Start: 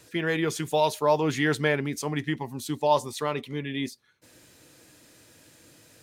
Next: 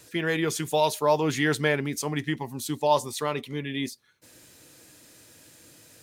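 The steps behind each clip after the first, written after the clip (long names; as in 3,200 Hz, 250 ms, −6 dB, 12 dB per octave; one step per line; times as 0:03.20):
high-shelf EQ 5,400 Hz +5.5 dB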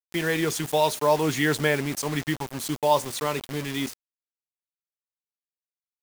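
bit reduction 6 bits
level +1 dB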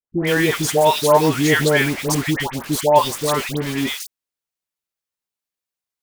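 all-pass dispersion highs, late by 134 ms, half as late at 1,200 Hz
level +7.5 dB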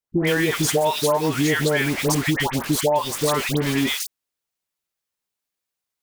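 downward compressor 10 to 1, threshold −20 dBFS, peak gain reduction 13 dB
level +3.5 dB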